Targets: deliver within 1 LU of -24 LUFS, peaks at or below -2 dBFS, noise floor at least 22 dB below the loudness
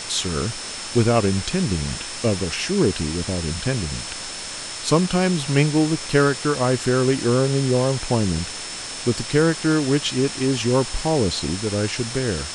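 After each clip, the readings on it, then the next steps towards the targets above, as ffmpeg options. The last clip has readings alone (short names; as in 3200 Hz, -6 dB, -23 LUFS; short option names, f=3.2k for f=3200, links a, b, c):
steady tone 5300 Hz; tone level -36 dBFS; noise floor -32 dBFS; noise floor target -44 dBFS; loudness -21.5 LUFS; peak -3.0 dBFS; loudness target -24.0 LUFS
-> -af "bandreject=f=5.3k:w=30"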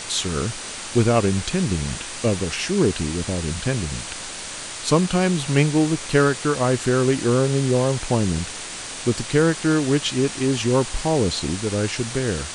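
steady tone none; noise floor -33 dBFS; noise floor target -44 dBFS
-> -af "afftdn=nr=11:nf=-33"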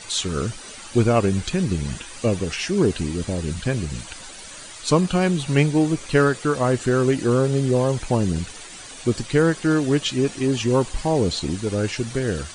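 noise floor -39 dBFS; noise floor target -44 dBFS
-> -af "afftdn=nr=6:nf=-39"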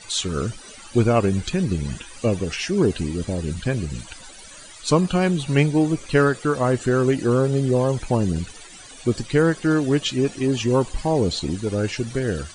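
noise floor -42 dBFS; noise floor target -44 dBFS
-> -af "afftdn=nr=6:nf=-42"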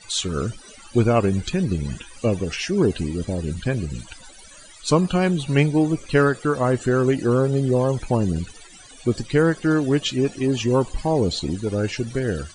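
noise floor -45 dBFS; loudness -22.0 LUFS; peak -3.5 dBFS; loudness target -24.0 LUFS
-> -af "volume=-2dB"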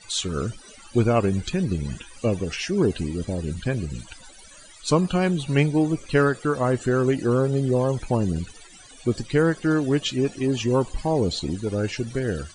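loudness -24.0 LUFS; peak -5.5 dBFS; noise floor -47 dBFS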